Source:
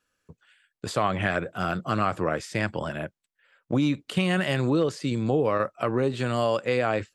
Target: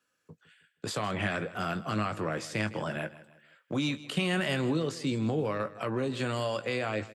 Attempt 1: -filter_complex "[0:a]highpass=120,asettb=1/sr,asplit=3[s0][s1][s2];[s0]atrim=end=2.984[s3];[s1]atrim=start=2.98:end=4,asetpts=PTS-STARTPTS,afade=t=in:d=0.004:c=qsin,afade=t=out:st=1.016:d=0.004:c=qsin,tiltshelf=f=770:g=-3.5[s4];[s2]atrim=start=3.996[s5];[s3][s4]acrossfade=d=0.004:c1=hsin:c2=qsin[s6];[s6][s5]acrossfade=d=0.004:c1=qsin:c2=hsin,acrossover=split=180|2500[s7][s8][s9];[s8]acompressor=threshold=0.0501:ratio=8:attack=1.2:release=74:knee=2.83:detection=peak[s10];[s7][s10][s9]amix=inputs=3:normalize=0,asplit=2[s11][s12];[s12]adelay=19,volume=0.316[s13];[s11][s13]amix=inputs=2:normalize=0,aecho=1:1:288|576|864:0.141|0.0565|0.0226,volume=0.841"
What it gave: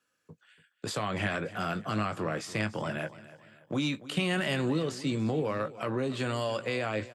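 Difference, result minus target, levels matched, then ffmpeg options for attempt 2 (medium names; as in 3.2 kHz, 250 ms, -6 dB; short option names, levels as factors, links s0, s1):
echo 129 ms late
-filter_complex "[0:a]highpass=120,asettb=1/sr,asplit=3[s0][s1][s2];[s0]atrim=end=2.984[s3];[s1]atrim=start=2.98:end=4,asetpts=PTS-STARTPTS,afade=t=in:d=0.004:c=qsin,afade=t=out:st=1.016:d=0.004:c=qsin,tiltshelf=f=770:g=-3.5[s4];[s2]atrim=start=3.996[s5];[s3][s4]acrossfade=d=0.004:c1=hsin:c2=qsin[s6];[s6][s5]acrossfade=d=0.004:c1=qsin:c2=hsin,acrossover=split=180|2500[s7][s8][s9];[s8]acompressor=threshold=0.0501:ratio=8:attack=1.2:release=74:knee=2.83:detection=peak[s10];[s7][s10][s9]amix=inputs=3:normalize=0,asplit=2[s11][s12];[s12]adelay=19,volume=0.316[s13];[s11][s13]amix=inputs=2:normalize=0,aecho=1:1:159|318|477:0.141|0.0565|0.0226,volume=0.841"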